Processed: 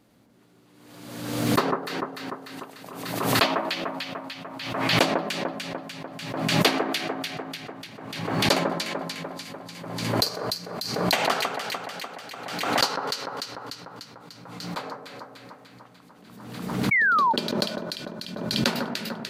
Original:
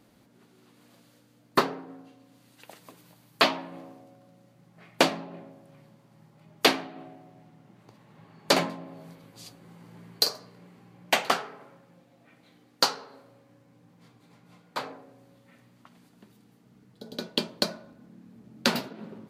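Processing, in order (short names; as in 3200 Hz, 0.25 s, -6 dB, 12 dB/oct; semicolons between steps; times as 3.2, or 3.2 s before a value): echo with dull and thin repeats by turns 0.148 s, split 1600 Hz, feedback 78%, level -3.5 dB; painted sound fall, 16.91–17.33, 860–2300 Hz -19 dBFS; backwards sustainer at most 44 dB/s; gain -1 dB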